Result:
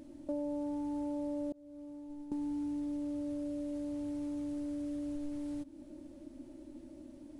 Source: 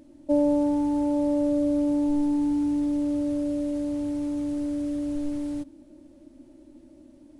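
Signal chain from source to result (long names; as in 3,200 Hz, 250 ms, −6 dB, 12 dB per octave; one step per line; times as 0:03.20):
0:01.52–0:02.32: downward expander −9 dBFS
downward compressor 3 to 1, threshold −40 dBFS, peak gain reduction 16 dB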